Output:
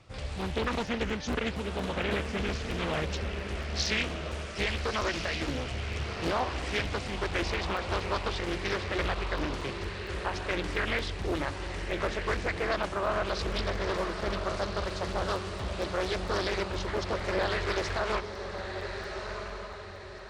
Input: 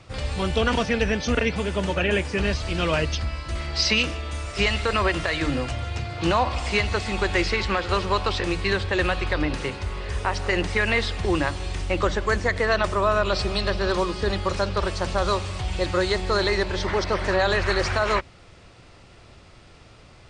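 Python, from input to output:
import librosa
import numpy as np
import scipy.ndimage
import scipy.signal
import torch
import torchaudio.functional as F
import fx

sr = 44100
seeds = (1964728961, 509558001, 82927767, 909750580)

y = fx.echo_diffused(x, sr, ms=1332, feedback_pct=40, wet_db=-6.5)
y = fx.buffer_crackle(y, sr, first_s=0.41, period_s=0.23, block=128, kind='zero')
y = fx.doppler_dist(y, sr, depth_ms=0.74)
y = F.gain(torch.from_numpy(y), -8.5).numpy()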